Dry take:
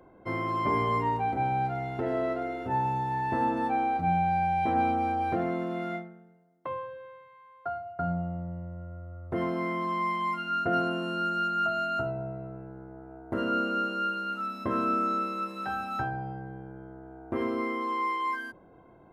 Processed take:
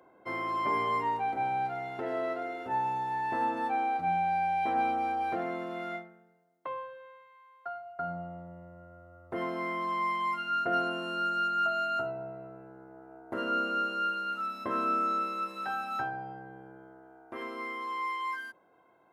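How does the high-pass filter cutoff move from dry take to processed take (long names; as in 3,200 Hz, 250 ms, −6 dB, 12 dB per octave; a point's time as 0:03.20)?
high-pass filter 6 dB per octave
0:06.67 610 Hz
0:07.68 1,400 Hz
0:08.19 530 Hz
0:16.72 530 Hz
0:17.32 1,400 Hz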